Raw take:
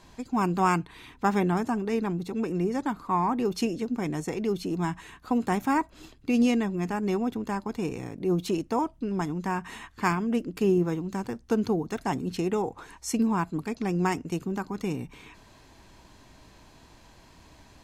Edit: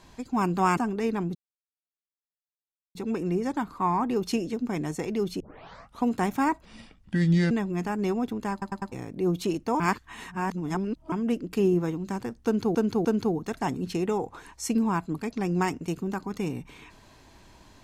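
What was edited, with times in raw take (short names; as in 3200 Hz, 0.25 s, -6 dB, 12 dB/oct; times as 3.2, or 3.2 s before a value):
0.77–1.66 cut
2.24 insert silence 1.60 s
4.69 tape start 0.64 s
5.94–6.55 speed 71%
7.56 stutter in place 0.10 s, 4 plays
8.84–10.16 reverse
11.49–11.79 loop, 3 plays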